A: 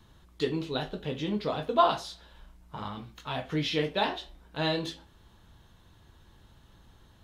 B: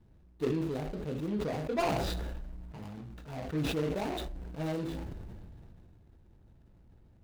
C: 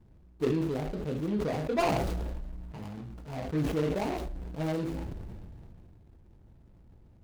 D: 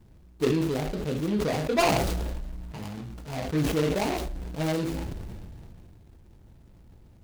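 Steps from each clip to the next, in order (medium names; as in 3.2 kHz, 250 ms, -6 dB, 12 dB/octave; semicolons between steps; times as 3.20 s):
median filter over 41 samples; decay stretcher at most 20 dB/s; trim -3 dB
median filter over 25 samples; trim +3 dB
treble shelf 2.4 kHz +8.5 dB; trim +3.5 dB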